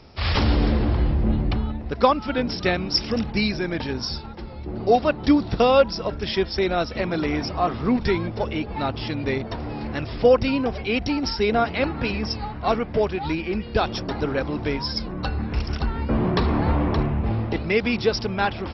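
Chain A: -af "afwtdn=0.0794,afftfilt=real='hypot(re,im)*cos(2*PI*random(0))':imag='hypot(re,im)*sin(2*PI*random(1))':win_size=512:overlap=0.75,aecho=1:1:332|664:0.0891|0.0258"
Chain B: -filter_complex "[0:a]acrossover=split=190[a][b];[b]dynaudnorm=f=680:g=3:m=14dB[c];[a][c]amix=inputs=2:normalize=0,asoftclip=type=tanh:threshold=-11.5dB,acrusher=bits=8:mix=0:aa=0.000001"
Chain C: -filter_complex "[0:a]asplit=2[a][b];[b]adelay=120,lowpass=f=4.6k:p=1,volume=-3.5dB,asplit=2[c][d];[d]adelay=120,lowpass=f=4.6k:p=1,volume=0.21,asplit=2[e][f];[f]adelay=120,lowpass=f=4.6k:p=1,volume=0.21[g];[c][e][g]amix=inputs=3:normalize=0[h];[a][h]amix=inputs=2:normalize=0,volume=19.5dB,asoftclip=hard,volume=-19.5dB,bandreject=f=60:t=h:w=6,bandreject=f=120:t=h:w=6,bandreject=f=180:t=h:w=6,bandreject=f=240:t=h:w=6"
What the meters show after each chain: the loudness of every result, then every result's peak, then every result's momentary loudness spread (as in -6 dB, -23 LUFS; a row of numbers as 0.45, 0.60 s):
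-30.5, -20.5, -25.0 LUFS; -8.5, -11.5, -15.0 dBFS; 10, 5, 4 LU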